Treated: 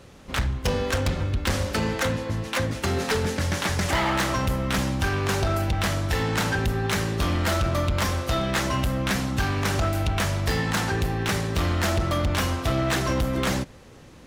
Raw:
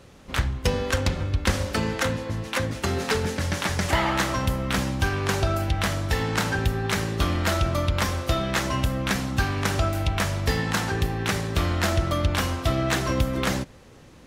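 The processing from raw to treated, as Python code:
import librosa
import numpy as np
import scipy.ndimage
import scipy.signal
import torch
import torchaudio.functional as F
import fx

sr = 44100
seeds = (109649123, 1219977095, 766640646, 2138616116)

y = np.clip(x, -10.0 ** (-20.5 / 20.0), 10.0 ** (-20.5 / 20.0))
y = y * 10.0 ** (1.5 / 20.0)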